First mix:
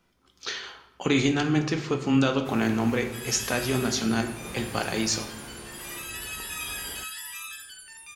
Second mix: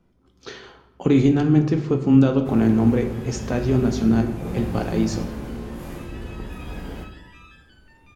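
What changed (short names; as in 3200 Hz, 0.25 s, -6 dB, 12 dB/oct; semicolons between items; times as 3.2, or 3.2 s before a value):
first sound: send on; second sound: add air absorption 190 m; master: add tilt shelf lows +9.5 dB, about 830 Hz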